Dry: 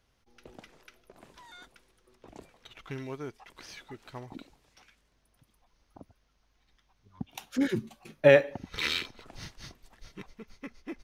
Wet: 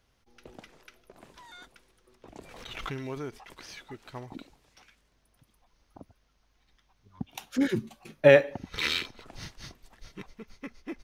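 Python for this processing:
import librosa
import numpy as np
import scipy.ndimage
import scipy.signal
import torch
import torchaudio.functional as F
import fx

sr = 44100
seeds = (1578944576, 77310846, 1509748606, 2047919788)

y = fx.pre_swell(x, sr, db_per_s=37.0, at=(2.37, 3.53), fade=0.02)
y = y * librosa.db_to_amplitude(1.5)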